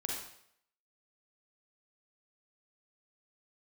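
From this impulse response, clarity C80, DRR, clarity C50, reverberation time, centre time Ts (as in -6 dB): 4.5 dB, -2.0 dB, 0.0 dB, 0.70 s, 54 ms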